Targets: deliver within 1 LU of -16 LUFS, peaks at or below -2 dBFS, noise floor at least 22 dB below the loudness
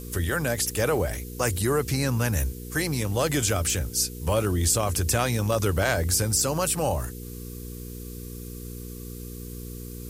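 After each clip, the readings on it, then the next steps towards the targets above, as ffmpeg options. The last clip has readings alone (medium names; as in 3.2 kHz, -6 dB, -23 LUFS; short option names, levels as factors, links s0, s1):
hum 60 Hz; highest harmonic 480 Hz; hum level -36 dBFS; noise floor -38 dBFS; noise floor target -47 dBFS; loudness -25.0 LUFS; peak level -10.0 dBFS; loudness target -16.0 LUFS
-> -af "bandreject=f=60:t=h:w=4,bandreject=f=120:t=h:w=4,bandreject=f=180:t=h:w=4,bandreject=f=240:t=h:w=4,bandreject=f=300:t=h:w=4,bandreject=f=360:t=h:w=4,bandreject=f=420:t=h:w=4,bandreject=f=480:t=h:w=4"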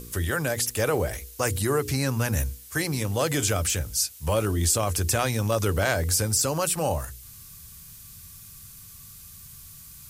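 hum not found; noise floor -46 dBFS; noise floor target -47 dBFS
-> -af "afftdn=nr=6:nf=-46"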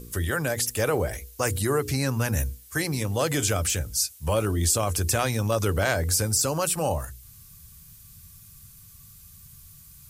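noise floor -50 dBFS; loudness -25.0 LUFS; peak level -9.5 dBFS; loudness target -16.0 LUFS
-> -af "volume=2.82,alimiter=limit=0.794:level=0:latency=1"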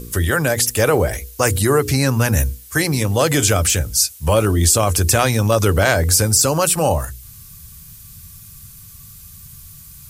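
loudness -16.5 LUFS; peak level -2.0 dBFS; noise floor -41 dBFS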